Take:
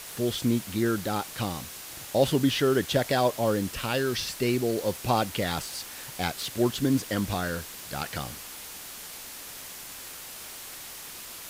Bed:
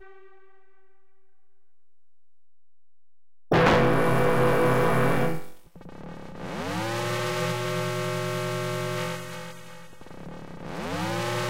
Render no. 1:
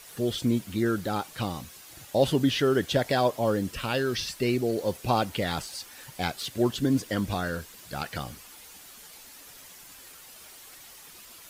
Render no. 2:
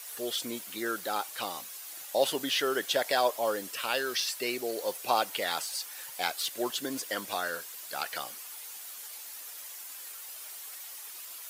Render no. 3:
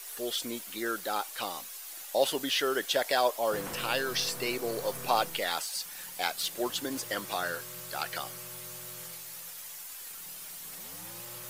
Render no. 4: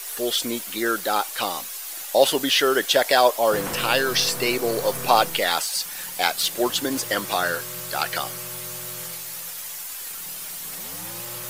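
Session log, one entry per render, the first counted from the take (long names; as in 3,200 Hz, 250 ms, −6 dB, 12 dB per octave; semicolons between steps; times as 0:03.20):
broadband denoise 9 dB, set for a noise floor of −42 dBFS
high-pass filter 570 Hz 12 dB per octave; high-shelf EQ 8,400 Hz +9 dB
mix in bed −22 dB
level +9.5 dB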